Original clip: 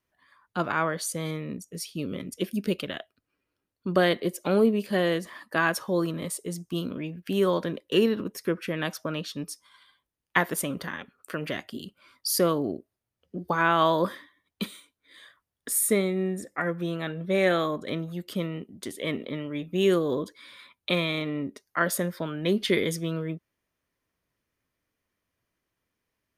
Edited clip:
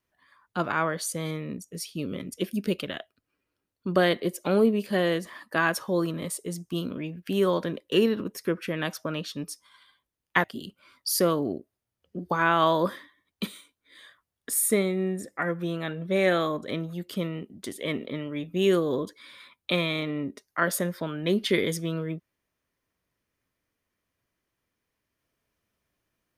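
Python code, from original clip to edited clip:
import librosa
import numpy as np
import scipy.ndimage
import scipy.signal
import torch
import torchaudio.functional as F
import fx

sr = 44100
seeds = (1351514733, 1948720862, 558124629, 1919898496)

y = fx.edit(x, sr, fx.cut(start_s=10.44, length_s=1.19), tone=tone)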